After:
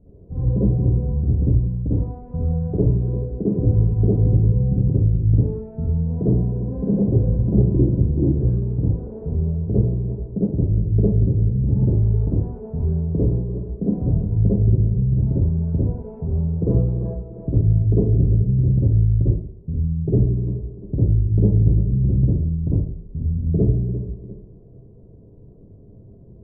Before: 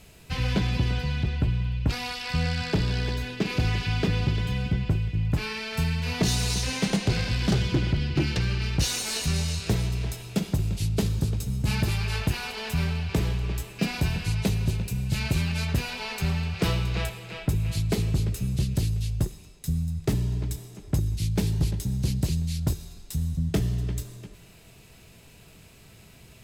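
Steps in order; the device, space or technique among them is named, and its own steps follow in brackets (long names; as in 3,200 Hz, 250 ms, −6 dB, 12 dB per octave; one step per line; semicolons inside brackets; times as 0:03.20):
next room (low-pass filter 480 Hz 24 dB per octave; convolution reverb RT60 0.50 s, pre-delay 46 ms, DRR −9 dB)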